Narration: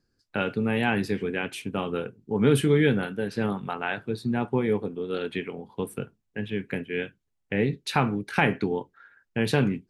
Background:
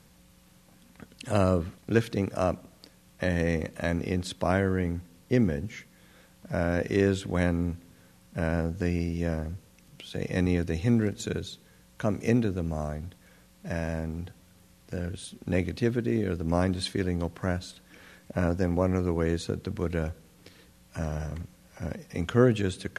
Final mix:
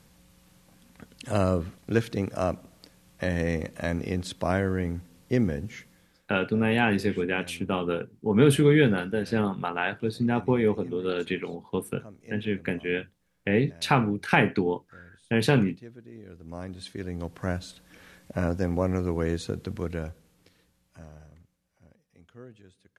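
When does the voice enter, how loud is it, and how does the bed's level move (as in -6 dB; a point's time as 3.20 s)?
5.95 s, +1.5 dB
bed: 5.90 s -0.5 dB
6.40 s -19.5 dB
16.10 s -19.5 dB
17.48 s -0.5 dB
19.72 s -0.5 dB
22.07 s -26 dB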